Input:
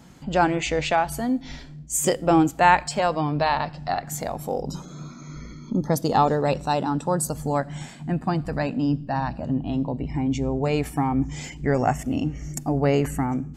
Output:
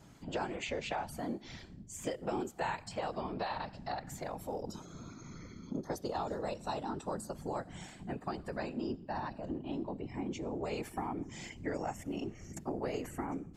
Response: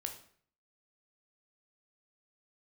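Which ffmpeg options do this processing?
-filter_complex "[0:a]afftfilt=real='hypot(re,im)*cos(2*PI*random(0))':imag='hypot(re,im)*sin(2*PI*random(1))':win_size=512:overlap=0.75,acrossover=split=270|4400[s0][s1][s2];[s0]acompressor=threshold=0.00631:ratio=4[s3];[s1]acompressor=threshold=0.0224:ratio=4[s4];[s2]acompressor=threshold=0.00316:ratio=4[s5];[s3][s4][s5]amix=inputs=3:normalize=0,volume=0.75"

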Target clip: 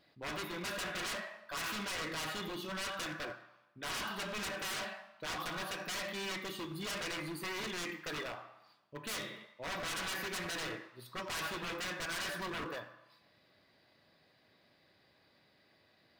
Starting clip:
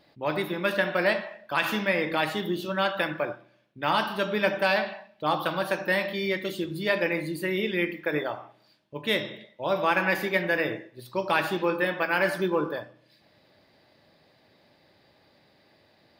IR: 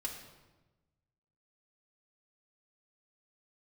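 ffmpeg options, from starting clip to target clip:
-filter_complex "[0:a]aeval=exprs='0.0422*(abs(mod(val(0)/0.0422+3,4)-2)-1)':c=same,asplit=2[s0][s1];[s1]highpass=f=1100:t=q:w=2.1[s2];[1:a]atrim=start_sample=2205[s3];[s2][s3]afir=irnorm=-1:irlink=0,volume=0.531[s4];[s0][s4]amix=inputs=2:normalize=0,volume=0.376"

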